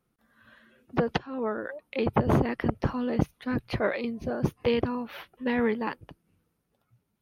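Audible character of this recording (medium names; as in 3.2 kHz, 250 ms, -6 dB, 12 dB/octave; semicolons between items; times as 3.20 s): noise floor -77 dBFS; spectral tilt -6.0 dB/octave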